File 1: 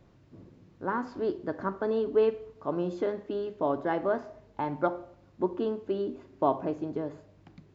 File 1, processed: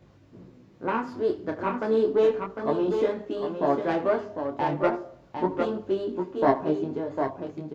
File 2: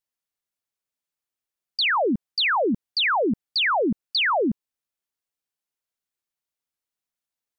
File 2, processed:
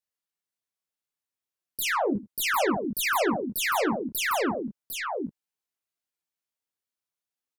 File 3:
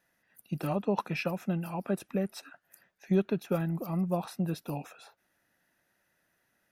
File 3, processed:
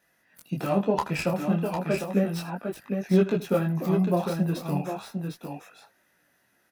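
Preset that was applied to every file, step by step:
tracing distortion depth 0.13 ms; high-pass 65 Hz 6 dB/octave; dynamic bell 3.4 kHz, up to -3 dB, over -38 dBFS, Q 0.76; multi-tap echo 79/753 ms -17/-6 dB; detune thickener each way 12 cents; normalise loudness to -27 LUFS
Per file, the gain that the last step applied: +7.5 dB, 0.0 dB, +9.5 dB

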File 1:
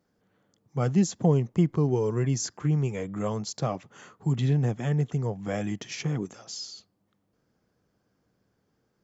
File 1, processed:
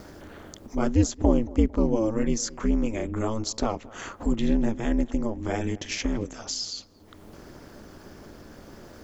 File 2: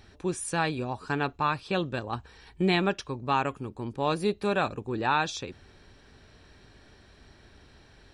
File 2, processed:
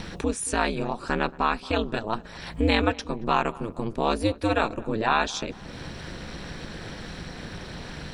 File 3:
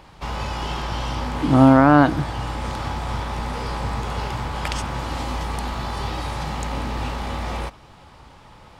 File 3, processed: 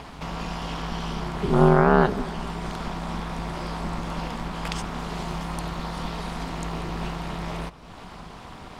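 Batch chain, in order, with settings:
upward compressor, threshold -26 dBFS; ring modulator 110 Hz; filtered feedback delay 226 ms, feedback 48%, low-pass 1.5 kHz, level -20 dB; normalise loudness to -27 LUFS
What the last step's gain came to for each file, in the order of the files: +4.5 dB, +5.5 dB, -1.5 dB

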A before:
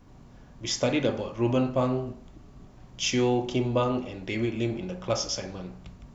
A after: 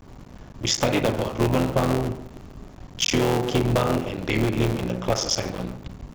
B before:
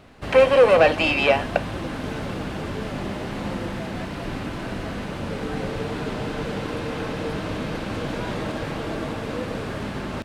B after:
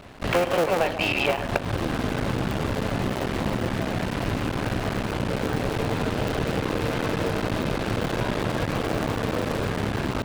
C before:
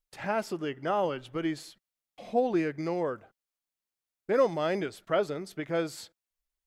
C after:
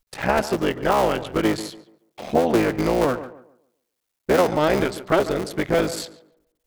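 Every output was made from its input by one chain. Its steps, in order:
cycle switcher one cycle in 3, muted; dynamic bell 110 Hz, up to +6 dB, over -49 dBFS, Q 4.2; compression 4:1, threshold -27 dBFS; tape echo 142 ms, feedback 33%, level -12 dB, low-pass 1.4 kHz; peak normalisation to -6 dBFS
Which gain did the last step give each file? +9.0 dB, +6.0 dB, +13.0 dB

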